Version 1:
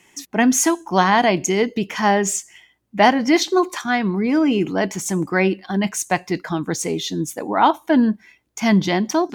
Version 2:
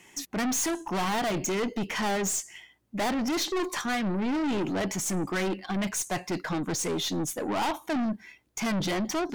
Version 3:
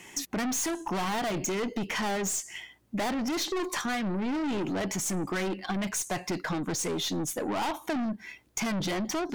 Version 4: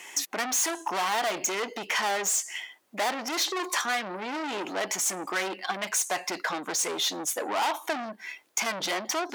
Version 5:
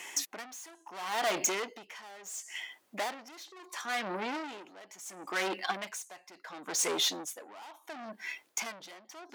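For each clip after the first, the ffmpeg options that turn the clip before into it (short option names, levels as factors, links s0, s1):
-af "aeval=exprs='(tanh(20*val(0)+0.2)-tanh(0.2))/20':c=same"
-af "acompressor=threshold=0.0158:ratio=4,volume=2"
-af "highpass=570,volume=1.78"
-af "aeval=exprs='val(0)*pow(10,-22*(0.5-0.5*cos(2*PI*0.72*n/s))/20)':c=same"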